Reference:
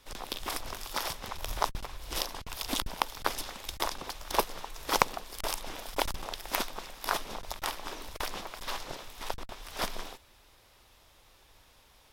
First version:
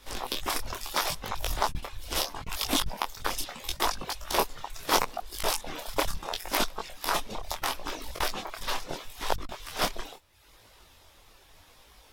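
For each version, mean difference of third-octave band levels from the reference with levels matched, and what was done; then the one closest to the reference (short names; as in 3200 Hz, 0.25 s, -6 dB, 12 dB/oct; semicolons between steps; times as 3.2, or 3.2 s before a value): 3.0 dB: reverb removal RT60 0.82 s; maximiser +14 dB; detuned doubles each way 26 cents; gain -4 dB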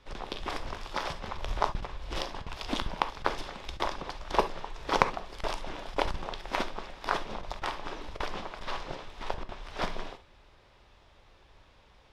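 6.0 dB: Bessel low-pass 3100 Hz, order 2; low shelf 490 Hz +3 dB; non-linear reverb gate 90 ms flat, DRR 9 dB; gain +1 dB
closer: first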